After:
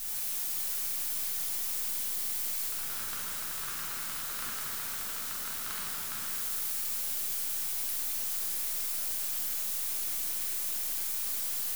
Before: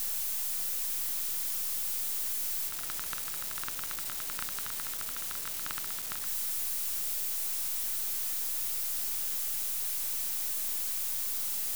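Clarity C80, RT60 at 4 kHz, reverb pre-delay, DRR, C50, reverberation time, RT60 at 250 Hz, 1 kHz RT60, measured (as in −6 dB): −0.5 dB, 2.2 s, 4 ms, −6.5 dB, −2.5 dB, 2.8 s, 2.7 s, 2.8 s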